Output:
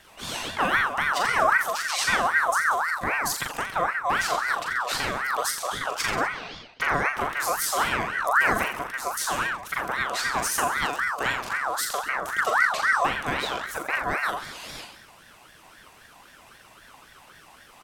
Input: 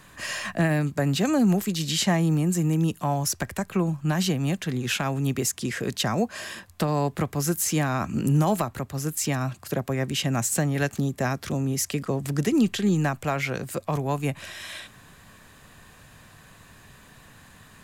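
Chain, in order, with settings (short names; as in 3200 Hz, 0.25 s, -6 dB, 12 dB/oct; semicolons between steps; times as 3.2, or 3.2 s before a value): 6.28–6.81 Chebyshev band-pass 270–3800 Hz, order 3; reverse bouncing-ball echo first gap 40 ms, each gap 1.1×, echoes 5; ring modulator with a swept carrier 1300 Hz, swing 35%, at 3.8 Hz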